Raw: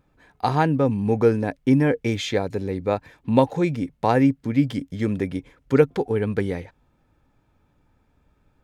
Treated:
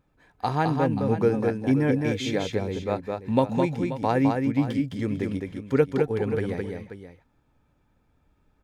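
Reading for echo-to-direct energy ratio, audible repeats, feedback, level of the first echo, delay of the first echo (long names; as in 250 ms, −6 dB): −3.5 dB, 2, repeats not evenly spaced, −4.0 dB, 211 ms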